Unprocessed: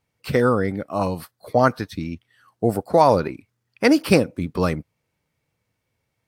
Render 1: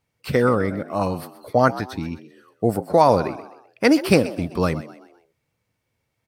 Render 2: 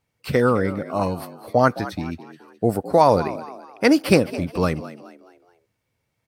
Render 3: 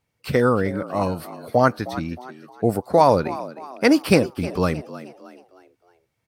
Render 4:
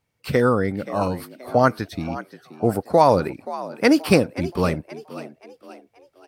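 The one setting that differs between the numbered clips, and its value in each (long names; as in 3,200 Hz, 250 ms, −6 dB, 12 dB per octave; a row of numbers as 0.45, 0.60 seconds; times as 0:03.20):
echo with shifted repeats, delay time: 128, 212, 312, 527 milliseconds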